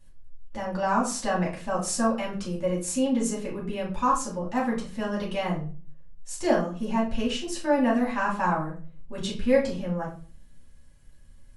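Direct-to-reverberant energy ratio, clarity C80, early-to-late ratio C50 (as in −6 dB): −5.5 dB, 13.5 dB, 8.0 dB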